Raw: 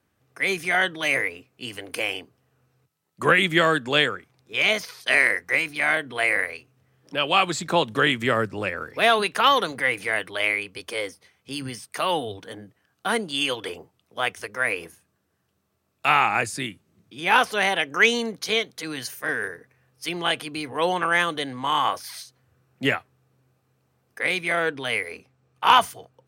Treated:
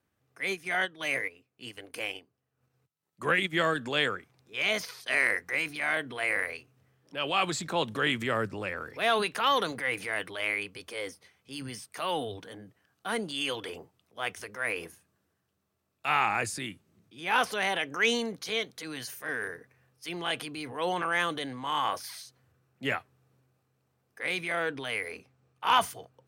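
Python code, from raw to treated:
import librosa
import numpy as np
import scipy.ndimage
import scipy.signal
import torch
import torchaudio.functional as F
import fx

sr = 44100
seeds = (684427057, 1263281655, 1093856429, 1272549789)

y = fx.transient(x, sr, attack_db=-4, sustain_db=fx.steps((0.0, -9.0), (3.77, 4.0)))
y = y * 10.0 ** (-6.5 / 20.0)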